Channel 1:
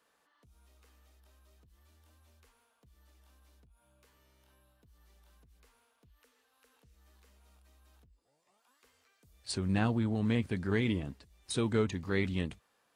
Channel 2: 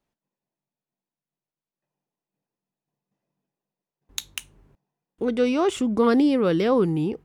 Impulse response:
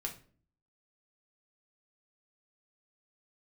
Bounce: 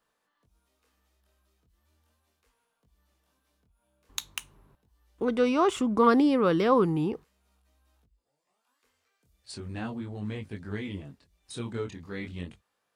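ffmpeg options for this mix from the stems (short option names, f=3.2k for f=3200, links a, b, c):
-filter_complex "[0:a]flanger=delay=19:depth=6.4:speed=0.38,volume=-2dB[a];[1:a]equalizer=f=1.1k:t=o:w=0.77:g=8.5,volume=-3.5dB[b];[a][b]amix=inputs=2:normalize=0"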